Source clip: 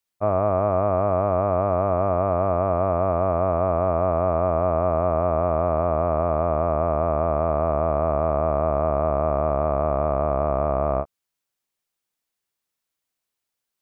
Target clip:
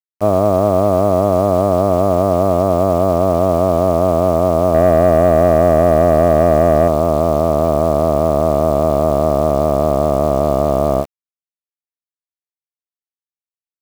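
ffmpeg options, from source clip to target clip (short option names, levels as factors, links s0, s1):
-filter_complex "[0:a]equalizer=f=270:w=0.38:g=12.5,asplit=2[s0][s1];[s1]alimiter=limit=0.112:level=0:latency=1:release=36,volume=0.794[s2];[s0][s2]amix=inputs=2:normalize=0,asettb=1/sr,asplit=3[s3][s4][s5];[s3]atrim=end=4.744[s6];[s4]atrim=start=4.74:end=6.88,asetpts=PTS-STARTPTS,afade=t=in:d=0.004:c=qsin,afade=t=out:st=2.136:d=0.004:c=qsin,acontrast=23[s7];[s5]atrim=start=6.876[s8];[s6][s7]acrossfade=d=0.004:c1=hsin:c2=qsin[s9];[s9][s8]acrossfade=d=0.004:c1=qsin:c2=hsin,acrusher=bits=6:dc=4:mix=0:aa=0.000001,volume=0.841"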